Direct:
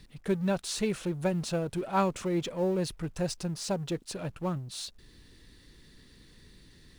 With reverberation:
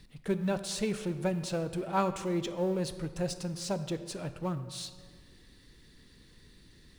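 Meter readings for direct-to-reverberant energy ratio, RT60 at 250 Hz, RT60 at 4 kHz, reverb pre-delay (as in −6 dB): 11.0 dB, 1.9 s, 1.1 s, 15 ms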